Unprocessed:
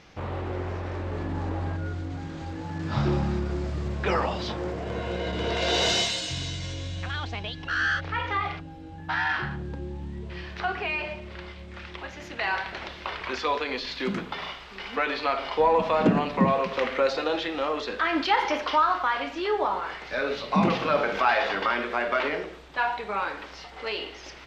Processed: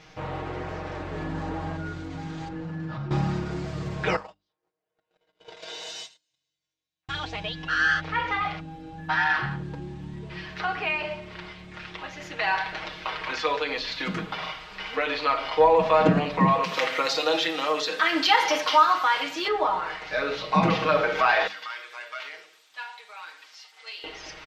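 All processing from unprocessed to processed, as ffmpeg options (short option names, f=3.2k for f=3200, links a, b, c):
-filter_complex "[0:a]asettb=1/sr,asplit=3[a][b][c];[a]atrim=end=2.484[d];[b]atrim=start=2.48:end=3.11,asetpts=PTS-STARTPTS,afade=t=in:d=0.004:c=qsin,afade=t=out:st=0.626:d=0.004:c=qsin,lowpass=f=1.6k:p=1,aecho=1:1:5.7:0.32,atrim=end_sample=27783,acompressor=threshold=-31dB:ratio=16:attack=3.2:release=140:knee=1:detection=peak[e];[c]atrim=start=3.106[f];[d][e]acrossfade=d=0.004:c1=hsin:c2=qsin[g];[g][f]acrossfade=d=0.004:c1=qsin:c2=hsin,asettb=1/sr,asplit=3[h][i][j];[h]atrim=end=4.164[k];[i]atrim=start=4.16:end=7.09,asetpts=PTS-STARTPTS,afade=t=in:d=0.004:c=qsin,afade=t=out:st=2.926:d=0.004:c=qsin,agate=range=-52dB:threshold=-25dB:ratio=16:release=100:detection=peak,bass=f=250:g=-14,treble=f=4k:g=5,acompressor=threshold=-37dB:ratio=12:attack=3.2:release=140:knee=1:detection=peak[l];[j]atrim=start=7.086[m];[k][l]acrossfade=d=0.004:c1=hsin:c2=qsin[n];[n][m]acrossfade=d=0.004:c1=qsin:c2=hsin,asettb=1/sr,asplit=3[o][p][q];[o]atrim=end=16.634[r];[p]atrim=start=16.63:end=19.48,asetpts=PTS-STARTPTS,afade=t=in:d=0.004:c=qsin,afade=t=out:st=2.846:d=0.004:c=qsin,highpass=f=130:w=0.5412,highpass=f=130:w=1.3066,aemphasis=mode=production:type=75fm[s];[q]atrim=start=19.476[t];[r][s]acrossfade=d=0.004:c1=hsin:c2=qsin[u];[u][t]acrossfade=d=0.004:c1=qsin:c2=hsin,asettb=1/sr,asplit=3[v][w][x];[v]atrim=end=21.474[y];[w]atrim=start=21.47:end=24.04,asetpts=PTS-STARTPTS,afade=t=in:d=0.004:c=qsin,afade=t=out:st=2.566:d=0.004:c=qsin,highpass=170,aderivative[z];[x]atrim=start=24.036[aa];[y][z]acrossfade=d=0.004:c1=hsin:c2=qsin[ab];[ab][aa]acrossfade=d=0.004:c1=qsin:c2=hsin,equalizer=f=310:w=1.5:g=-3.5,bandreject=f=50:t=h:w=6,bandreject=f=100:t=h:w=6,bandreject=f=150:t=h:w=6,bandreject=f=200:t=h:w=6,bandreject=f=250:t=h:w=6,bandreject=f=300:t=h:w=6,aecho=1:1:6.4:0.84"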